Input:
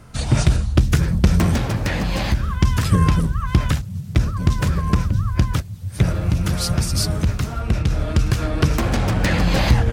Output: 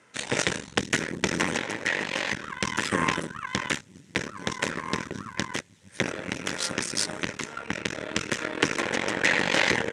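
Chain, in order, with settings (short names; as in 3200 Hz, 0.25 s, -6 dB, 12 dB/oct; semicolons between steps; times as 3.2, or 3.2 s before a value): added harmonics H 5 -19 dB, 6 -14 dB, 7 -17 dB, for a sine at -1 dBFS; speaker cabinet 440–8400 Hz, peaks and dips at 710 Hz -10 dB, 1200 Hz -7 dB, 1900 Hz +6 dB, 4600 Hz -7 dB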